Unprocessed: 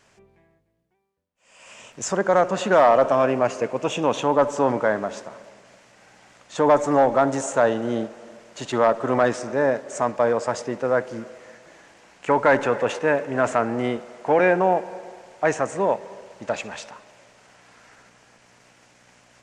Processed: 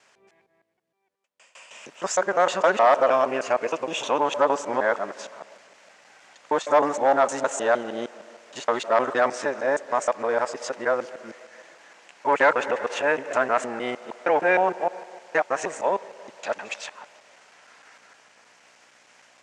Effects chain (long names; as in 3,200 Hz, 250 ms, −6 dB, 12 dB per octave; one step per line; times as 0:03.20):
reversed piece by piece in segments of 155 ms
meter weighting curve A